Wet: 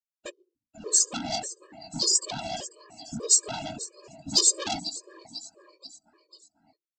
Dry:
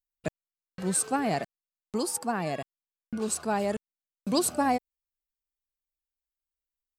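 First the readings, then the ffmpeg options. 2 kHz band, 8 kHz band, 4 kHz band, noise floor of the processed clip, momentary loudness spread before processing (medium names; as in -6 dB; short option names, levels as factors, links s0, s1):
-5.0 dB, +9.5 dB, +12.5 dB, under -85 dBFS, 13 LU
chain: -filter_complex "[0:a]afftdn=nr=31:nf=-38,bandreject=f=60:t=h:w=6,bandreject=f=120:t=h:w=6,bandreject=f=180:t=h:w=6,bandreject=f=240:t=h:w=6,bandreject=f=300:t=h:w=6,bandreject=f=360:t=h:w=6,bandreject=f=420:t=h:w=6,aecho=1:1:3:0.54,asplit=2[s0][s1];[s1]acompressor=threshold=0.0224:ratio=20,volume=1[s2];[s0][s2]amix=inputs=2:normalize=0,aecho=1:1:492|984|1476|1968:0.126|0.0604|0.029|0.0139,flanger=delay=15:depth=4.9:speed=2.7,afftfilt=real='hypot(re,im)*cos(2*PI*random(0))':imag='hypot(re,im)*sin(2*PI*random(1))':win_size=512:overlap=0.75,aresample=16000,asoftclip=type=tanh:threshold=0.0224,aresample=44100,aexciter=amount=7.8:drive=9:freq=3000,afftfilt=real='re*gt(sin(2*PI*1.7*pts/sr)*(1-2*mod(floor(b*sr/1024/320),2)),0)':imag='im*gt(sin(2*PI*1.7*pts/sr)*(1-2*mod(floor(b*sr/1024/320),2)),0)':win_size=1024:overlap=0.75,volume=1.88"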